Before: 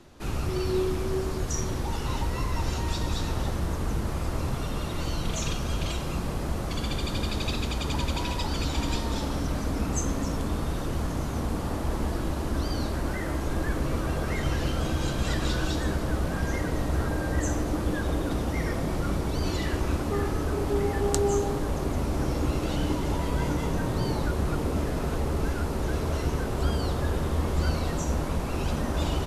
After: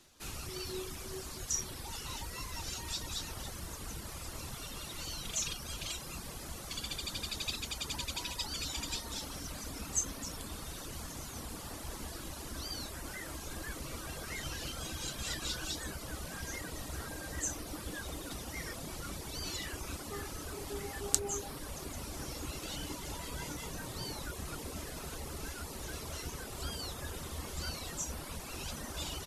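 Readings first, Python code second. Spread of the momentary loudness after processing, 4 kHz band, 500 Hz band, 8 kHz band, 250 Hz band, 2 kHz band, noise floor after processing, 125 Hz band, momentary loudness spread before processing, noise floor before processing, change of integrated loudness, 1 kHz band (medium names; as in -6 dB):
7 LU, -3.0 dB, -15.5 dB, +0.5 dB, -16.5 dB, -8.0 dB, -45 dBFS, -17.0 dB, 3 LU, -31 dBFS, -10.5 dB, -12.5 dB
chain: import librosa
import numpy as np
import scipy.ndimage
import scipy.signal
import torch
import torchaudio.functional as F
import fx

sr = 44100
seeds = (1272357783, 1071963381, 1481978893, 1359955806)

y = scipy.signal.lfilter([1.0, -0.9], [1.0], x)
y = fx.dereverb_blind(y, sr, rt60_s=0.73)
y = fx.high_shelf(y, sr, hz=9500.0, db=-7.0)
y = F.gain(torch.from_numpy(y), 5.0).numpy()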